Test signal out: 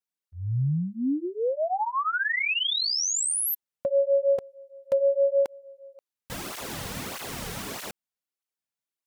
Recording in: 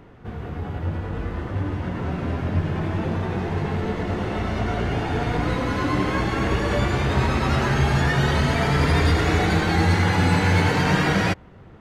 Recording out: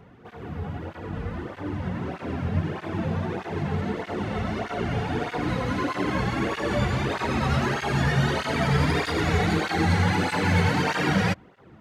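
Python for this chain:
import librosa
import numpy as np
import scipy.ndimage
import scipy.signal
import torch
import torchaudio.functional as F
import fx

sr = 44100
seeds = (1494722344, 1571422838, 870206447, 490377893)

y = fx.flanger_cancel(x, sr, hz=1.6, depth_ms=3.5)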